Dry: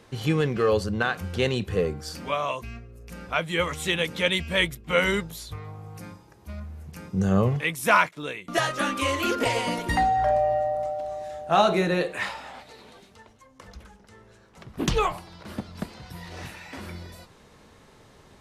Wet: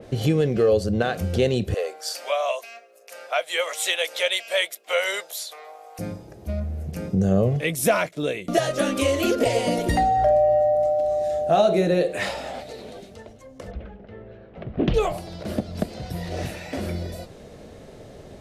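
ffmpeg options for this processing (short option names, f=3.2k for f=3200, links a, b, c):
-filter_complex "[0:a]asettb=1/sr,asplit=3[a][b][c];[a]atrim=end=1.744[d];[b]atrim=start=1.74:end=5.99,asetpts=PTS-STARTPTS,afade=t=in:d=0.004:c=qsin,afade=t=out:st=4.246:d=0.004:c=qsin,highpass=f=660:w=0.5412,highpass=f=660:w=1.3066[e];[c]atrim=start=5.986[f];[d][e]acrossfade=d=0.004:c1=hsin:c2=qsin[g];[g][f]acrossfade=d=0.004:c1=qsin:c2=hsin,asettb=1/sr,asplit=3[h][i][j];[h]atrim=end=13.714[k];[i]atrim=start=13.71:end=14.94,asetpts=PTS-STARTPTS,afade=t=in:d=0.004:c=qsin,afade=t=out:st=1.226:d=0.004:c=qsin,lowpass=f=3.1k:w=0.5412,lowpass=f=3.1k:w=1.3066[l];[j]atrim=start=14.936[m];[k][l]acrossfade=d=0.004:c1=hsin:c2=qsin[n];[n][m]acrossfade=d=0.004:c1=qsin:c2=hsin,lowshelf=f=790:t=q:w=3:g=6,acompressor=threshold=-27dB:ratio=2,adynamicequalizer=threshold=0.00631:dfrequency=3400:dqfactor=0.7:tfrequency=3400:tqfactor=0.7:attack=5:release=100:ratio=0.375:range=2.5:mode=boostabove:tftype=highshelf,volume=4dB"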